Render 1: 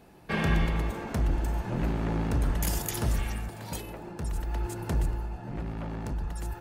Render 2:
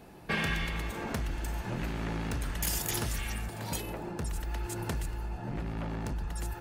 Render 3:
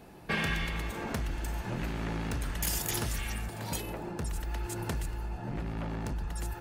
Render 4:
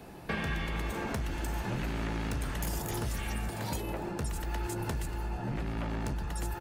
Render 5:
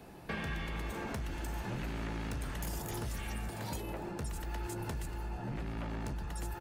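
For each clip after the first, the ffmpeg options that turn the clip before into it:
-filter_complex "[0:a]acrossover=split=1500[s0][s1];[s0]acompressor=threshold=0.0178:ratio=6[s2];[s1]asoftclip=type=hard:threshold=0.0376[s3];[s2][s3]amix=inputs=2:normalize=0,volume=1.41"
-af anull
-filter_complex "[0:a]acrossover=split=97|1300[s0][s1][s2];[s0]acompressor=threshold=0.0112:ratio=4[s3];[s1]acompressor=threshold=0.0141:ratio=4[s4];[s2]acompressor=threshold=0.00562:ratio=4[s5];[s3][s4][s5]amix=inputs=3:normalize=0,asplit=2[s6][s7];[s7]adelay=15,volume=0.224[s8];[s6][s8]amix=inputs=2:normalize=0,volume=1.5"
-af "asoftclip=type=tanh:threshold=0.0794,volume=0.631"

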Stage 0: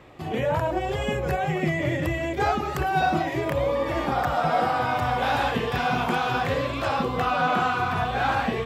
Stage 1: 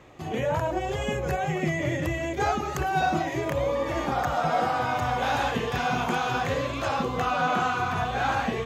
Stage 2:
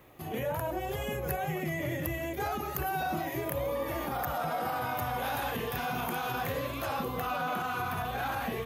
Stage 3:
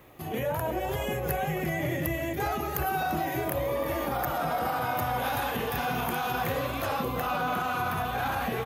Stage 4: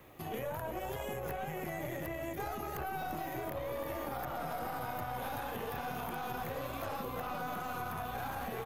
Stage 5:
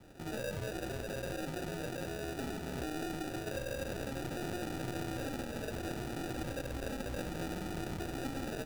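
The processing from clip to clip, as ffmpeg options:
-af "equalizer=f=6500:t=o:w=0.2:g=11.5,volume=0.794"
-af "alimiter=limit=0.112:level=0:latency=1:release=24,aexciter=amount=14.4:drive=3.2:freq=10000,volume=0.531"
-filter_complex "[0:a]asplit=2[s0][s1];[s1]adelay=344,volume=0.398,highshelf=f=4000:g=-7.74[s2];[s0][s2]amix=inputs=2:normalize=0,volume=1.41"
-filter_complex "[0:a]aeval=exprs='(tanh(8.91*val(0)+0.7)-tanh(0.7))/8.91':c=same,acrossover=split=440|1400|5400[s0][s1][s2][s3];[s0]acompressor=threshold=0.00631:ratio=4[s4];[s1]acompressor=threshold=0.00891:ratio=4[s5];[s2]acompressor=threshold=0.00224:ratio=4[s6];[s3]acompressor=threshold=0.00251:ratio=4[s7];[s4][s5][s6][s7]amix=inputs=4:normalize=0,volume=1.12"
-af "acrusher=samples=41:mix=1:aa=0.000001"

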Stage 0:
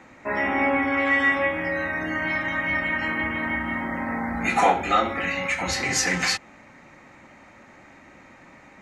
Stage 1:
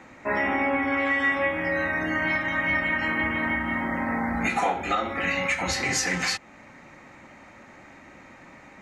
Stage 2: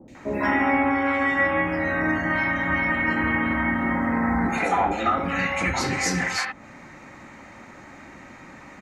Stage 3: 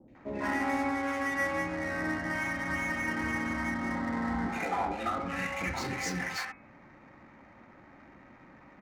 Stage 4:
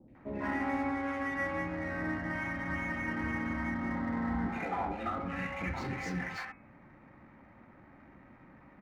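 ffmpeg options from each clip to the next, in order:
-af "alimiter=limit=0.168:level=0:latency=1:release=342,volume=1.12"
-filter_complex "[0:a]acrossover=split=590|2600[s0][s1][s2];[s2]adelay=80[s3];[s1]adelay=150[s4];[s0][s4][s3]amix=inputs=3:normalize=0,adynamicequalizer=threshold=0.01:dfrequency=2200:dqfactor=0.7:tfrequency=2200:tqfactor=0.7:attack=5:release=100:ratio=0.375:range=3.5:mode=cutabove:tftype=highshelf,volume=1.88"
-af "adynamicsmooth=sensitivity=6.5:basefreq=1800,bandreject=f=82.44:t=h:w=4,bandreject=f=164.88:t=h:w=4,bandreject=f=247.32:t=h:w=4,bandreject=f=329.76:t=h:w=4,bandreject=f=412.2:t=h:w=4,bandreject=f=494.64:t=h:w=4,bandreject=f=577.08:t=h:w=4,bandreject=f=659.52:t=h:w=4,bandreject=f=741.96:t=h:w=4,bandreject=f=824.4:t=h:w=4,bandreject=f=906.84:t=h:w=4,bandreject=f=989.28:t=h:w=4,bandreject=f=1071.72:t=h:w=4,bandreject=f=1154.16:t=h:w=4,bandreject=f=1236.6:t=h:w=4,bandreject=f=1319.04:t=h:w=4,bandreject=f=1401.48:t=h:w=4,bandreject=f=1483.92:t=h:w=4,bandreject=f=1566.36:t=h:w=4,bandreject=f=1648.8:t=h:w=4,bandreject=f=1731.24:t=h:w=4,bandreject=f=1813.68:t=h:w=4,bandreject=f=1896.12:t=h:w=4,bandreject=f=1978.56:t=h:w=4,bandreject=f=2061:t=h:w=4,bandreject=f=2143.44:t=h:w=4,bandreject=f=2225.88:t=h:w=4,bandreject=f=2308.32:t=h:w=4,bandreject=f=2390.76:t=h:w=4,bandreject=f=2473.2:t=h:w=4,bandreject=f=2555.64:t=h:w=4,volume=0.355"
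-af "bass=f=250:g=5,treble=f=4000:g=-12,volume=0.668"

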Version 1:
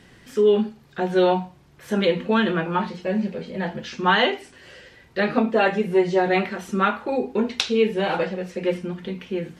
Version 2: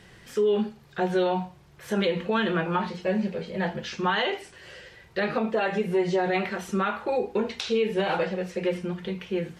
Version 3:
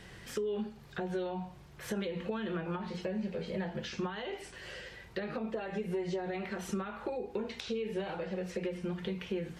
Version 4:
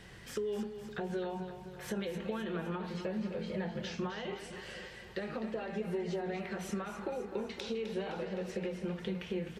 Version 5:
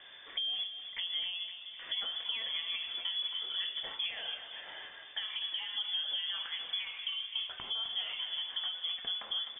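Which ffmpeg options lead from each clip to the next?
-af "equalizer=f=260:t=o:w=0.25:g=-14.5,alimiter=limit=0.158:level=0:latency=1:release=87"
-filter_complex "[0:a]acompressor=threshold=0.0251:ratio=6,aeval=exprs='val(0)+0.000891*(sin(2*PI*50*n/s)+sin(2*PI*2*50*n/s)/2+sin(2*PI*3*50*n/s)/3+sin(2*PI*4*50*n/s)/4+sin(2*PI*5*50*n/s)/5)':c=same,acrossover=split=480[s0][s1];[s1]acompressor=threshold=0.01:ratio=6[s2];[s0][s2]amix=inputs=2:normalize=0"
-af "aecho=1:1:257|514|771|1028|1285|1542|1799:0.316|0.187|0.11|0.0649|0.0383|0.0226|0.0133,volume=0.841"
-af "lowpass=f=3100:t=q:w=0.5098,lowpass=f=3100:t=q:w=0.6013,lowpass=f=3100:t=q:w=0.9,lowpass=f=3100:t=q:w=2.563,afreqshift=-3600"

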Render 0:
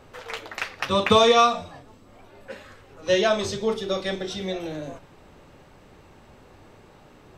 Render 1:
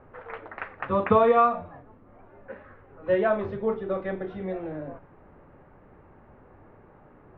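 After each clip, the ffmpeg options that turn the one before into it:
-af "lowpass=f=1800:w=0.5412,lowpass=f=1800:w=1.3066,volume=0.794"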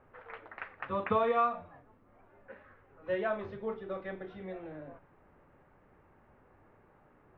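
-af "tiltshelf=f=1400:g=-4,volume=0.447"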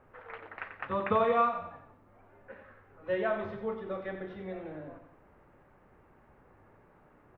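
-af "aecho=1:1:90|180|270|360|450:0.355|0.156|0.0687|0.0302|0.0133,volume=1.19"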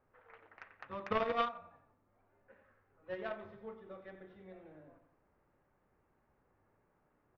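-af "aeval=exprs='0.178*(cos(1*acos(clip(val(0)/0.178,-1,1)))-cos(1*PI/2))+0.0447*(cos(3*acos(clip(val(0)/0.178,-1,1)))-cos(3*PI/2))':c=same,volume=0.794"

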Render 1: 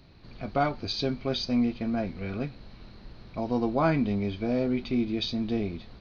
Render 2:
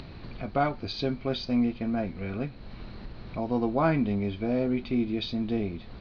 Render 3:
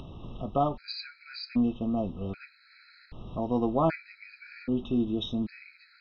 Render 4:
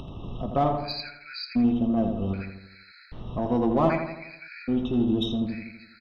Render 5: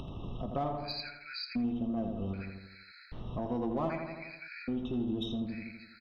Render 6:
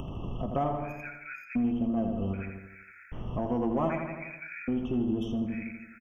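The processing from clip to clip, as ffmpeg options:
-af "lowpass=3800,acompressor=mode=upward:threshold=0.0251:ratio=2.5"
-af "afftfilt=real='re*gt(sin(2*PI*0.64*pts/sr)*(1-2*mod(floor(b*sr/1024/1300),2)),0)':imag='im*gt(sin(2*PI*0.64*pts/sr)*(1-2*mod(floor(b*sr/1024/1300),2)),0)':win_size=1024:overlap=0.75"
-filter_complex "[0:a]asplit=2[s0][s1];[s1]asoftclip=type=tanh:threshold=0.0398,volume=0.596[s2];[s0][s2]amix=inputs=2:normalize=0,asplit=2[s3][s4];[s4]adelay=83,lowpass=f=2000:p=1,volume=0.562,asplit=2[s5][s6];[s6]adelay=83,lowpass=f=2000:p=1,volume=0.55,asplit=2[s7][s8];[s8]adelay=83,lowpass=f=2000:p=1,volume=0.55,asplit=2[s9][s10];[s10]adelay=83,lowpass=f=2000:p=1,volume=0.55,asplit=2[s11][s12];[s12]adelay=83,lowpass=f=2000:p=1,volume=0.55,asplit=2[s13][s14];[s14]adelay=83,lowpass=f=2000:p=1,volume=0.55,asplit=2[s15][s16];[s16]adelay=83,lowpass=f=2000:p=1,volume=0.55[s17];[s3][s5][s7][s9][s11][s13][s15][s17]amix=inputs=8:normalize=0"
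-af "acompressor=threshold=0.0224:ratio=2,volume=0.708"
-af "asuperstop=centerf=4300:order=12:qfactor=1.9,aecho=1:1:153|306:0.126|0.0302,volume=1.68"

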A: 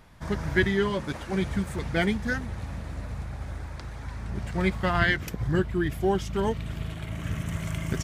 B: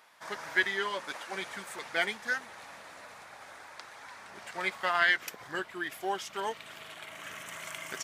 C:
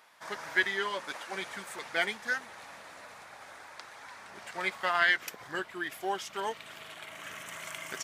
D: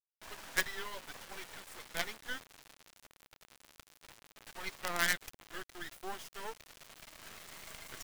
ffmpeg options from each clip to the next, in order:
-af "highpass=750"
-af anull
-af "acrusher=bits=4:dc=4:mix=0:aa=0.000001,volume=0.531"

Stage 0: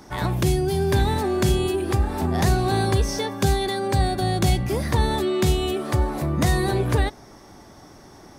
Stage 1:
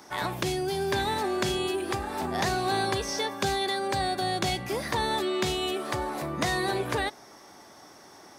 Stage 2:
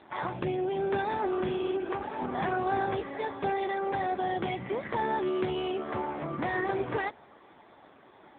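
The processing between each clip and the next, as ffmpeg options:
-filter_complex "[0:a]highpass=f=630:p=1,acrossover=split=6600[s0][s1];[s1]acompressor=threshold=0.00631:ratio=4:attack=1:release=60[s2];[s0][s2]amix=inputs=2:normalize=0"
-filter_complex "[0:a]acrossover=split=3000[s0][s1];[s1]acompressor=threshold=0.00316:ratio=4:attack=1:release=60[s2];[s0][s2]amix=inputs=2:normalize=0" -ar 8000 -c:a libopencore_amrnb -b:a 5900

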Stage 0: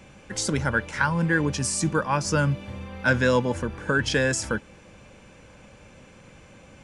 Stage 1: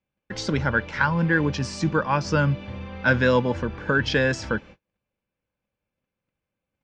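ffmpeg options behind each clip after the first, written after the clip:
-af "lowpass=f=4900:w=0.5412,lowpass=f=4900:w=1.3066,agate=range=0.0141:threshold=0.00708:ratio=16:detection=peak,volume=1.19"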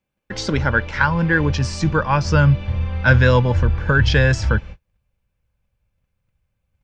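-af "asubboost=boost=11.5:cutoff=85,volume=1.68"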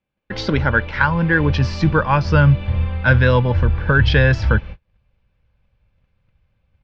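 -af "lowpass=f=4400:w=0.5412,lowpass=f=4400:w=1.3066,dynaudnorm=f=200:g=3:m=2.82,volume=0.891"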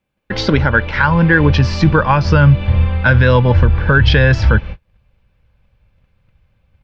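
-af "alimiter=limit=0.422:level=0:latency=1:release=113,volume=2.11"

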